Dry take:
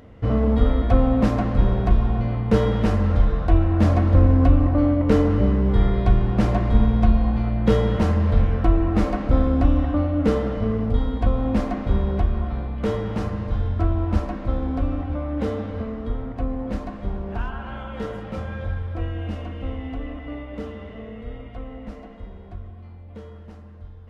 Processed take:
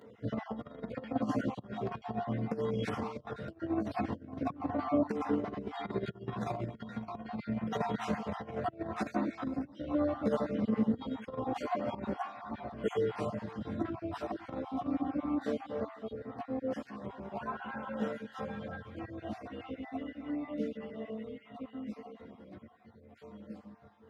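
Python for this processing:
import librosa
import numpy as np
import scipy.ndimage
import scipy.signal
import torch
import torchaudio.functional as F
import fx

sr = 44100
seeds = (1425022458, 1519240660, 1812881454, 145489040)

p1 = fx.spec_dropout(x, sr, seeds[0], share_pct=39)
p2 = fx.dynamic_eq(p1, sr, hz=710.0, q=2.4, threshold_db=-44.0, ratio=4.0, max_db=3)
p3 = fx.chorus_voices(p2, sr, voices=6, hz=0.17, base_ms=16, depth_ms=2.5, mix_pct=65)
p4 = p3 + fx.echo_single(p3, sr, ms=502, db=-21.0, dry=0)
p5 = fx.over_compress(p4, sr, threshold_db=-21.0, ratio=-0.5)
p6 = scipy.signal.sosfilt(scipy.signal.butter(4, 140.0, 'highpass', fs=sr, output='sos'), p5)
y = p6 * librosa.db_to_amplitude(-6.0)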